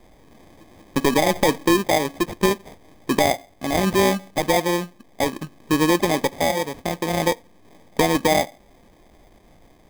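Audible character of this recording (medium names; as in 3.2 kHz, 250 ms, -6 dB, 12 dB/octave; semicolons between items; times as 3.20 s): aliases and images of a low sample rate 1.4 kHz, jitter 0%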